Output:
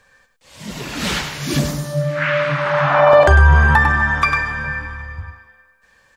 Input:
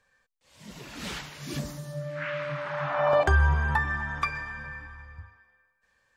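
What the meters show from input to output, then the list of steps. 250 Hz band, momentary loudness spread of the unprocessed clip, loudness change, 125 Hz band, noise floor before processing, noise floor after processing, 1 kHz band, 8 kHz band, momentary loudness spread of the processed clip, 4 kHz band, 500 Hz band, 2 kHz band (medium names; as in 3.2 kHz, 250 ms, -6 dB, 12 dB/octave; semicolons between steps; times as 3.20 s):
+14.0 dB, 21 LU, +13.0 dB, +12.5 dB, -72 dBFS, -57 dBFS, +13.0 dB, +14.5 dB, 19 LU, +14.5 dB, +13.0 dB, +13.5 dB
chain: on a send: delay 99 ms -8.5 dB; on the sum: loudness maximiser +15.5 dB; trim -1 dB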